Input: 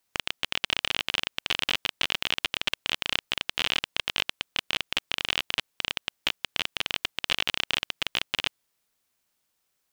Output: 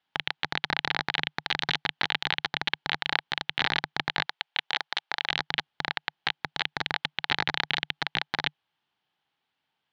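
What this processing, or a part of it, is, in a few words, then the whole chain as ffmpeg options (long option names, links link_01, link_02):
ring modulator pedal into a guitar cabinet: -filter_complex "[0:a]aeval=exprs='val(0)*sgn(sin(2*PI*1000*n/s))':channel_layout=same,highpass=86,equalizer=frequency=150:width_type=q:width=4:gain=7,equalizer=frequency=540:width_type=q:width=4:gain=-5,equalizer=frequency=830:width_type=q:width=4:gain=10,equalizer=frequency=1600:width_type=q:width=4:gain=4,equalizer=frequency=3100:width_type=q:width=4:gain=7,lowpass=frequency=4000:width=0.5412,lowpass=frequency=4000:width=1.3066,asettb=1/sr,asplit=3[link_01][link_02][link_03];[link_01]atrim=end=4.264[link_04];[link_02]atrim=start=4.26:end=5.31,asetpts=PTS-STARTPTS,afade=type=in:duration=0.004:curve=qsin,afade=type=out:start_time=1.046:duration=0.004:curve=qsin,highpass=500[link_05];[link_03]atrim=start=5.306[link_06];[link_04][link_05]acrossfade=duration=0.004:curve1=hsin:curve2=qsin[link_07];[link_07][link_06]acrossfade=duration=0.004:curve1=qsin:curve2=hsin,volume=-1.5dB"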